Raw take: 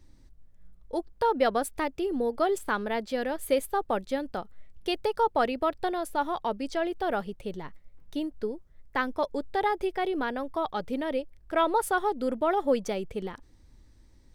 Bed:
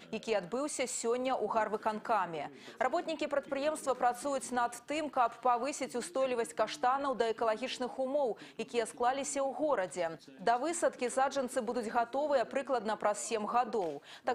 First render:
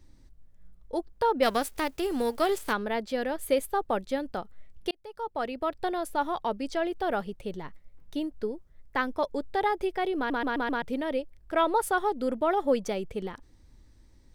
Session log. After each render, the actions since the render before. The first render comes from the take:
0:01.42–0:02.72: spectral envelope flattened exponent 0.6
0:04.91–0:05.95: fade in
0:10.17: stutter in place 0.13 s, 5 plays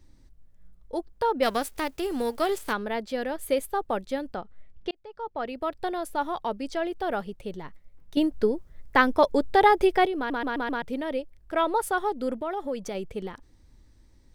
0:04.34–0:05.48: high-frequency loss of the air 130 metres
0:08.17–0:10.06: clip gain +8.5 dB
0:12.34–0:12.95: downward compressor 2 to 1, threshold −31 dBFS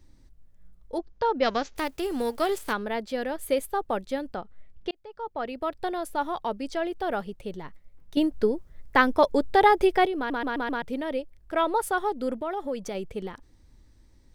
0:00.98–0:01.76: Butterworth low-pass 6,900 Hz 96 dB per octave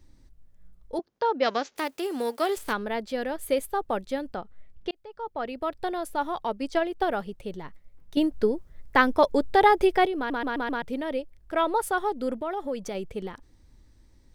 0:00.99–0:02.57: high-pass filter 240 Hz
0:06.47–0:07.11: transient designer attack +8 dB, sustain −3 dB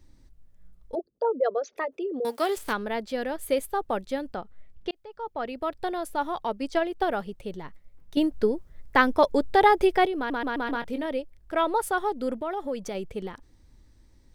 0:00.95–0:02.25: spectral envelope exaggerated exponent 3
0:10.63–0:11.06: double-tracking delay 22 ms −10 dB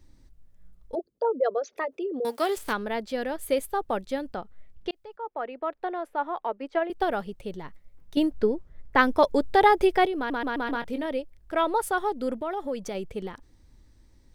0:05.16–0:06.90: three-way crossover with the lows and the highs turned down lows −20 dB, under 290 Hz, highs −21 dB, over 2,600 Hz
0:08.32–0:08.97: high-shelf EQ 6,300 Hz → 3,500 Hz −11.5 dB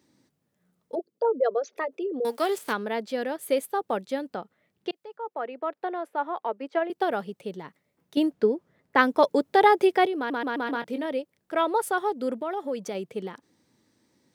high-pass filter 150 Hz 24 dB per octave
parametric band 450 Hz +2 dB 0.33 octaves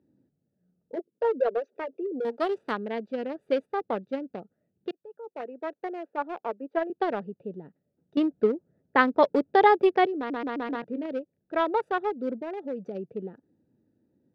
adaptive Wiener filter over 41 samples
Bessel low-pass filter 3,700 Hz, order 2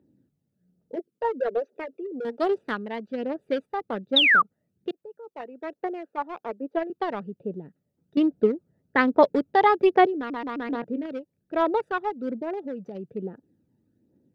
0:04.16–0:04.42: sound drawn into the spectrogram fall 1,100–3,900 Hz −16 dBFS
phase shifter 1.2 Hz, delay 1.1 ms, feedback 44%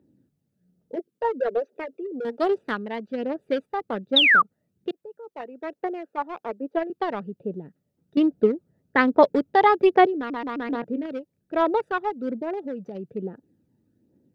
level +1.5 dB

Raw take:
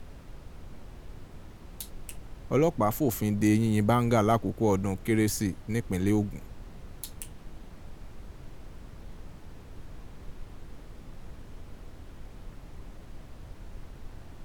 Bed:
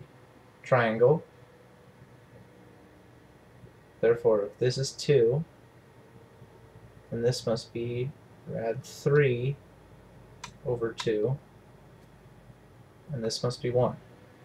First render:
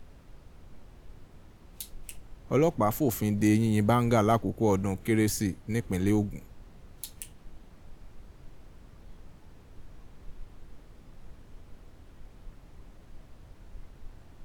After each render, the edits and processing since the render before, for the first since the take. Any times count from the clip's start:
noise reduction from a noise print 6 dB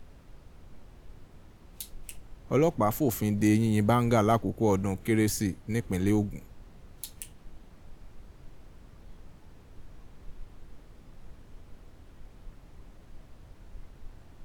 no processing that can be heard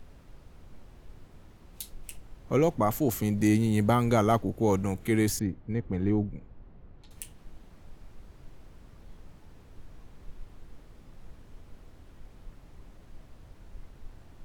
0:05.39–0:07.11: head-to-tape spacing loss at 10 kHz 37 dB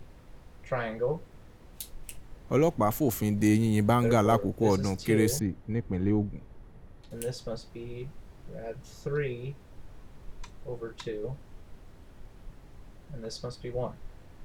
mix in bed −8 dB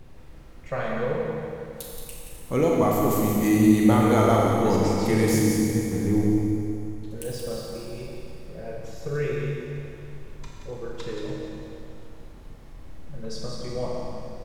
single-tap delay 177 ms −7 dB
four-comb reverb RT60 2.6 s, combs from 28 ms, DRR −2 dB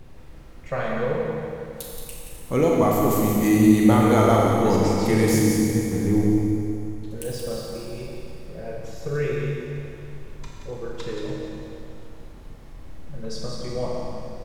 level +2 dB

